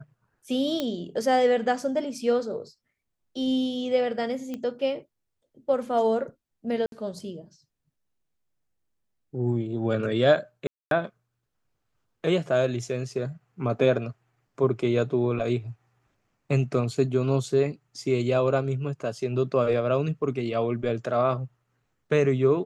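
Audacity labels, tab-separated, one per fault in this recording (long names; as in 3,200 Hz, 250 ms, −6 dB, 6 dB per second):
0.800000	0.800000	click −14 dBFS
4.540000	4.540000	click −21 dBFS
6.860000	6.920000	drop-out 62 ms
10.670000	10.910000	drop-out 242 ms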